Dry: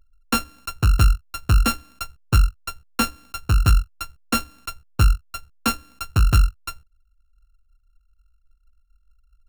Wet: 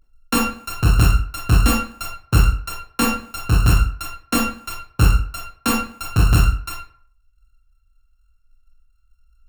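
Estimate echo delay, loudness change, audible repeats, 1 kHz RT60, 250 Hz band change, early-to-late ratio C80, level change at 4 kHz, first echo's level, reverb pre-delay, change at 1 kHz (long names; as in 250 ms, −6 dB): no echo audible, +2.5 dB, no echo audible, 0.50 s, +6.0 dB, 8.5 dB, +2.0 dB, no echo audible, 22 ms, +3.0 dB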